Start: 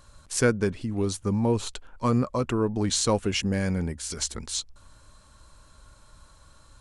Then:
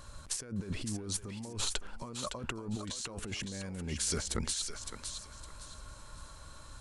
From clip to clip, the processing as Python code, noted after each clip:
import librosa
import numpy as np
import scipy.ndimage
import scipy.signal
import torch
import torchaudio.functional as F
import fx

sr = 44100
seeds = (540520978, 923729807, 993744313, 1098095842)

y = fx.over_compress(x, sr, threshold_db=-35.0, ratio=-1.0)
y = fx.echo_thinned(y, sr, ms=561, feedback_pct=31, hz=670.0, wet_db=-6.5)
y = F.gain(torch.from_numpy(y), -4.0).numpy()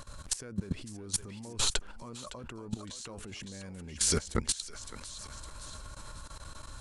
y = fx.level_steps(x, sr, step_db=17)
y = F.gain(torch.from_numpy(y), 7.0).numpy()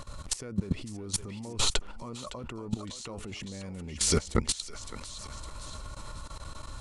y = fx.high_shelf(x, sr, hz=5700.0, db=-6.5)
y = fx.notch(y, sr, hz=1600.0, q=6.2)
y = F.gain(torch.from_numpy(y), 4.5).numpy()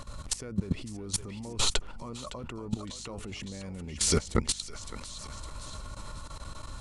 y = fx.add_hum(x, sr, base_hz=50, snr_db=19)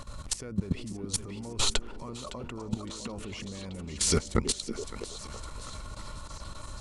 y = fx.echo_stepped(x, sr, ms=326, hz=290.0, octaves=0.7, feedback_pct=70, wet_db=-5.5)